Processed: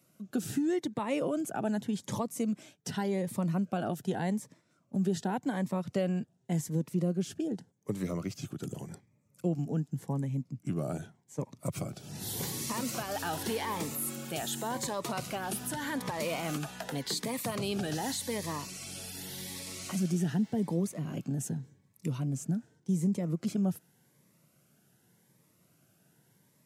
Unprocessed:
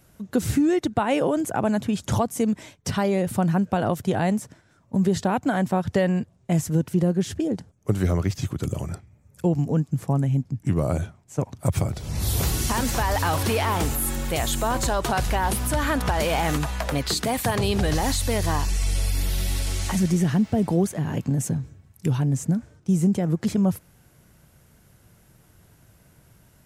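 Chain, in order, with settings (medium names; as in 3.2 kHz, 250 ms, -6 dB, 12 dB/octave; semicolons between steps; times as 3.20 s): high-pass 140 Hz 24 dB/octave; Shepard-style phaser rising 0.86 Hz; trim -8 dB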